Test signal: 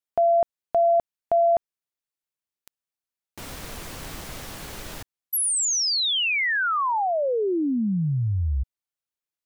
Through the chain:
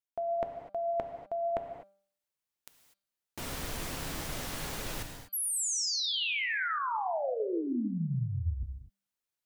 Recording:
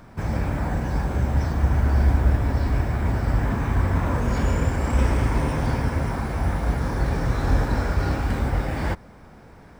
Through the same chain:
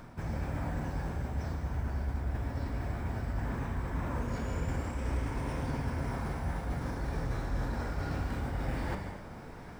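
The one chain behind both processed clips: de-hum 196.9 Hz, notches 24; reverse; compressor 4:1, threshold -34 dBFS; reverse; non-linear reverb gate 0.27 s flat, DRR 5 dB

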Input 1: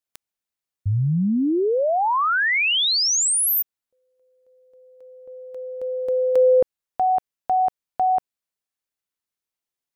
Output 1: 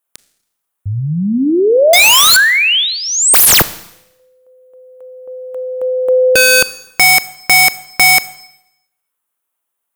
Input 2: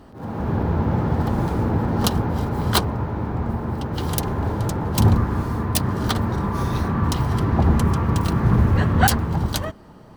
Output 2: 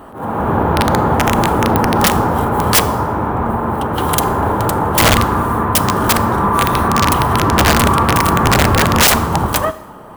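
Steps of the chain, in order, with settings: EQ curve 130 Hz 0 dB, 1200 Hz +14 dB, 2000 Hz +6 dB, 3200 Hz +6 dB, 4800 Hz -5 dB, 9800 Hz +13 dB; wrapped overs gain 6.5 dB; Schroeder reverb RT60 0.82 s, combs from 27 ms, DRR 15.5 dB; gain +2.5 dB

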